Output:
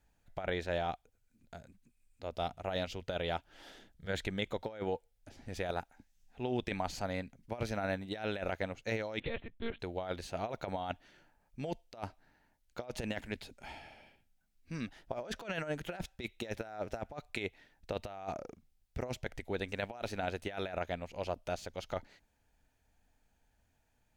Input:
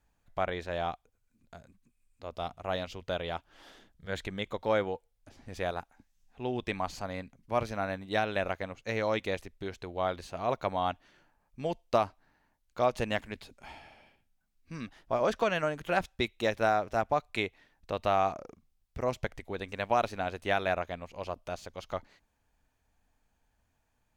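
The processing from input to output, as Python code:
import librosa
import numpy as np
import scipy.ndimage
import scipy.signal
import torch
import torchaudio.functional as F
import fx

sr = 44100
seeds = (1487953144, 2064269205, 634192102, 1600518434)

y = fx.peak_eq(x, sr, hz=1100.0, db=-9.0, octaves=0.26)
y = fx.over_compress(y, sr, threshold_db=-33.0, ratio=-0.5)
y = fx.lpc_monotone(y, sr, seeds[0], pitch_hz=230.0, order=10, at=(9.2, 9.8))
y = F.gain(torch.from_numpy(y), -2.5).numpy()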